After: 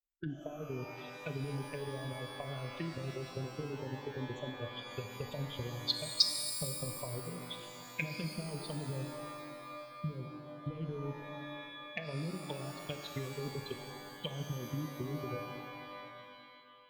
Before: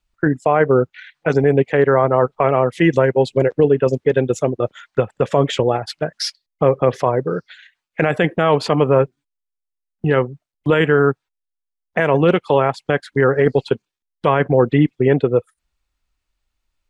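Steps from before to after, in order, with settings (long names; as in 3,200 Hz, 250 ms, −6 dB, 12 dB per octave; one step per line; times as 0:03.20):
spectral dynamics exaggerated over time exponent 2
brickwall limiter −15 dBFS, peak gain reduction 9 dB
treble cut that deepens with the level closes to 330 Hz, closed at −21 dBFS
parametric band 540 Hz −8 dB 2.8 octaves
downward compressor, threshold −31 dBFS, peak gain reduction 8.5 dB
high shelf with overshoot 2,300 Hz +14 dB, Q 3
reverb with rising layers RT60 2.2 s, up +12 semitones, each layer −2 dB, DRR 5.5 dB
level −5 dB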